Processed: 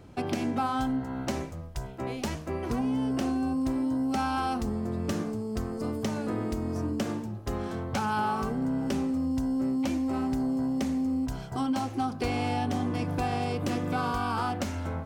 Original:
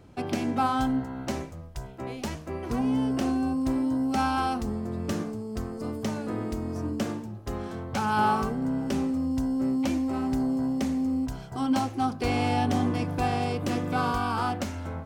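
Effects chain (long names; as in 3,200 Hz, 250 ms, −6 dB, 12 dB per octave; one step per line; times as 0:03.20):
downward compressor 4 to 1, threshold −28 dBFS, peak gain reduction 7.5 dB
level +2 dB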